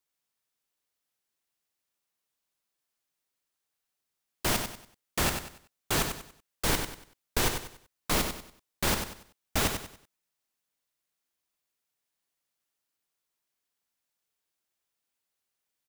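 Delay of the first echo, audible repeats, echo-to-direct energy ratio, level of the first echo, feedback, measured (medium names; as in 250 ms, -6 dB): 95 ms, 3, -6.5 dB, -7.0 dB, 33%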